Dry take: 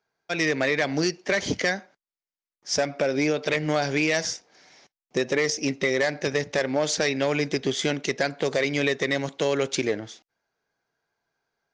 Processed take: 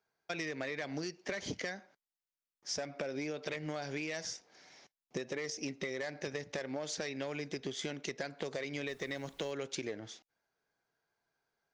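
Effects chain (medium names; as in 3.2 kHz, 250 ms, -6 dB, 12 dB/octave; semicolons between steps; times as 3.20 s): compression 6:1, threshold -31 dBFS, peak gain reduction 11.5 dB; 8.87–9.51 s: added noise pink -61 dBFS; trim -5 dB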